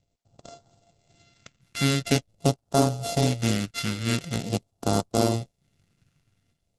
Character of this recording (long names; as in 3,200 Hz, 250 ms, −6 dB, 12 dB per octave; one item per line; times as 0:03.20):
a buzz of ramps at a fixed pitch in blocks of 64 samples
phaser sweep stages 2, 0.45 Hz, lowest notch 690–2,000 Hz
Opus